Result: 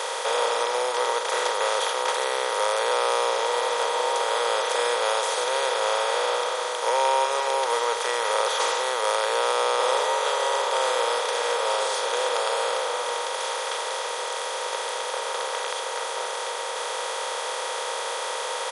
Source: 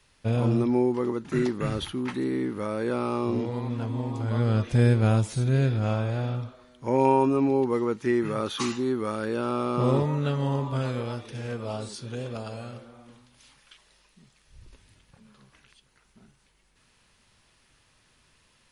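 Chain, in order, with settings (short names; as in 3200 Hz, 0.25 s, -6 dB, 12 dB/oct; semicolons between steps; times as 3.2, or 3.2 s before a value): per-bin compression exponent 0.2; elliptic high-pass 480 Hz, stop band 40 dB; high shelf 6700 Hz +7.5 dB; speakerphone echo 0.14 s, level -24 dB; gain -1 dB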